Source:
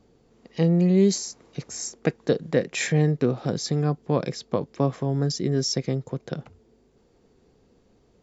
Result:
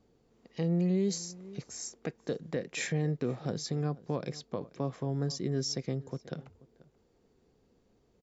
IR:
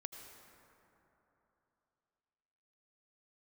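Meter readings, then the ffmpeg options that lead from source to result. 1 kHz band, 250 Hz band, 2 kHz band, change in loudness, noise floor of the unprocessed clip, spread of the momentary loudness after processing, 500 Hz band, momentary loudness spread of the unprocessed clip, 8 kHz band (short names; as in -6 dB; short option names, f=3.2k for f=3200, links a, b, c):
-10.0 dB, -9.5 dB, -9.0 dB, -9.5 dB, -62 dBFS, 12 LU, -10.5 dB, 13 LU, n/a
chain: -filter_complex "[0:a]asplit=2[a][b];[b]adelay=484,volume=-21dB,highshelf=f=4k:g=-10.9[c];[a][c]amix=inputs=2:normalize=0,alimiter=limit=-13dB:level=0:latency=1:release=102,volume=-8dB"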